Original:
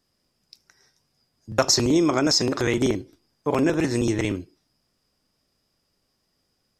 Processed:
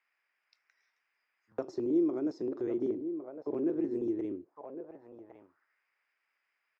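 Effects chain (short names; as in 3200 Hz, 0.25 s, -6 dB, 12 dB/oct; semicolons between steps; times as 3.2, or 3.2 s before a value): outdoor echo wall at 190 m, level -9 dB; band noise 260–1900 Hz -65 dBFS; auto-wah 350–2500 Hz, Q 3.1, down, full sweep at -24.5 dBFS; gain -6.5 dB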